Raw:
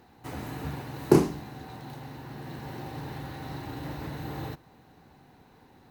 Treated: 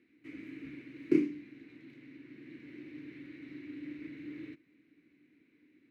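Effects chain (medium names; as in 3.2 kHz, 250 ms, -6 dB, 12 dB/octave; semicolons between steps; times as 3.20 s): two resonant band-passes 820 Hz, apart 2.9 oct; trim +1 dB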